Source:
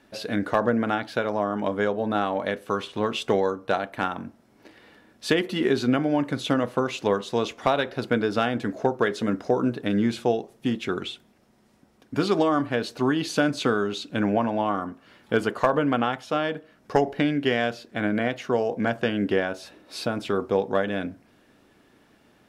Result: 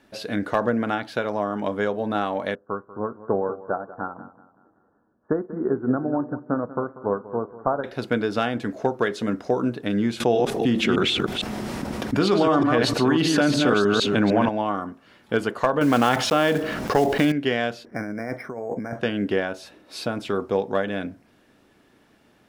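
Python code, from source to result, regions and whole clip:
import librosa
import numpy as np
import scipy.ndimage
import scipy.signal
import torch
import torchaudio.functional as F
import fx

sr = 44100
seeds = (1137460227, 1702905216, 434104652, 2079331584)

y = fx.chain(x, sr, fx.steep_lowpass(hz=1500.0, slope=72),
    fx.echo_feedback(ms=190, feedback_pct=48, wet_db=-11),
    fx.upward_expand(threshold_db=-41.0, expansion=1.5), at=(2.55, 7.84))
y = fx.chain(y, sr, fx.reverse_delay(ms=152, wet_db=-4.5),
    fx.high_shelf(hz=5300.0, db=-5.0),
    fx.env_flatten(amount_pct=70), at=(10.2, 14.49))
y = fx.chain(y, sr, fx.block_float(bits=5),
    fx.high_shelf(hz=8600.0, db=-6.0),
    fx.env_flatten(amount_pct=70), at=(15.81, 17.32))
y = fx.chain(y, sr, fx.brickwall_bandstop(low_hz=2400.0, high_hz=8700.0),
    fx.over_compress(threshold_db=-30.0, ratio=-1.0),
    fx.resample_linear(factor=6), at=(17.85, 19.01))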